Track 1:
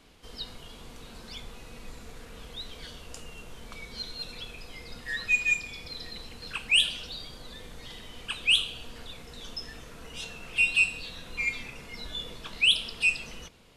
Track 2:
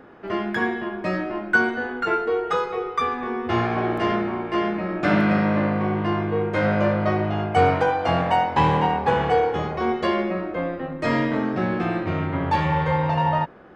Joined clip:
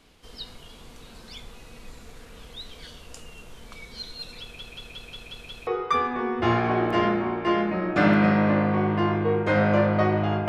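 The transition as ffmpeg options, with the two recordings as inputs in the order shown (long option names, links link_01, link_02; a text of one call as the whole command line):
ffmpeg -i cue0.wav -i cue1.wav -filter_complex "[0:a]apad=whole_dur=10.48,atrim=end=10.48,asplit=7[link_01][link_02][link_03][link_04][link_05][link_06][link_07];[link_01]atrim=end=4.592[link_08];[link_02]atrim=start=4.408:end=4.592[link_09];[link_03]atrim=start=4.408:end=4.592[link_10];[link_04]atrim=start=4.408:end=4.592[link_11];[link_05]atrim=start=4.408:end=4.592[link_12];[link_06]atrim=start=4.408:end=4.592[link_13];[link_07]atrim=start=4.408:end=4.592[link_14];[1:a]atrim=start=2.738:end=7.55[link_15];[link_08][link_09]acrossfade=duration=0.004:curve1=hsin:curve2=hsin[link_16];[link_16][link_10]acrossfade=duration=0.004:curve1=hsin:curve2=hsin[link_17];[link_17][link_11]acrossfade=duration=0.004:curve1=hsin:curve2=hsin[link_18];[link_18][link_12]acrossfade=duration=0.004:curve1=hsin:curve2=hsin[link_19];[link_19][link_13]acrossfade=duration=0.004:curve1=hsin:curve2=hsin[link_20];[link_20][link_14]acrossfade=duration=0.004:curve1=hsin:curve2=hsin[link_21];[link_21][link_15]acrossfade=duration=0.004:curve1=hsin:curve2=hsin" out.wav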